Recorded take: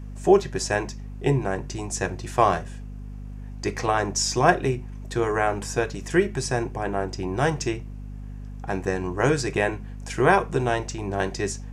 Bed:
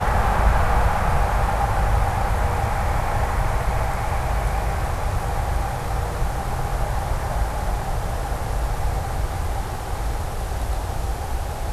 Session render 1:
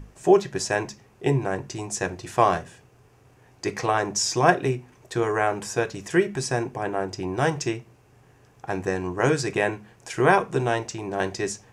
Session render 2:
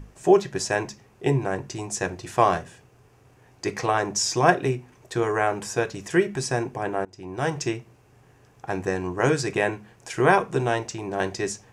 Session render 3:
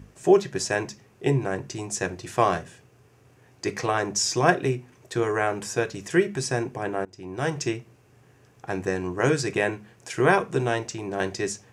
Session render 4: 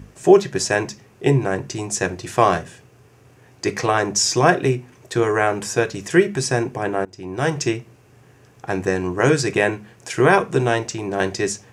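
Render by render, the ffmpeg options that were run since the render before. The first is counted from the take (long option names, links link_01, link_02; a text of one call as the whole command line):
ffmpeg -i in.wav -af "bandreject=frequency=50:width_type=h:width=6,bandreject=frequency=100:width_type=h:width=6,bandreject=frequency=150:width_type=h:width=6,bandreject=frequency=200:width_type=h:width=6,bandreject=frequency=250:width_type=h:width=6" out.wav
ffmpeg -i in.wav -filter_complex "[0:a]asplit=2[link_01][link_02];[link_01]atrim=end=7.05,asetpts=PTS-STARTPTS,afade=type=out:start_time=7.046:duration=0.004:curve=hsin:silence=0.0749894[link_03];[link_02]atrim=start=7.05,asetpts=PTS-STARTPTS,afade=type=in:duration=0.59:silence=0.0749894[link_04];[link_03][link_04]concat=n=2:v=0:a=1" out.wav
ffmpeg -i in.wav -af "highpass=72,equalizer=frequency=860:width_type=o:width=0.74:gain=-4" out.wav
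ffmpeg -i in.wav -af "volume=6dB,alimiter=limit=-1dB:level=0:latency=1" out.wav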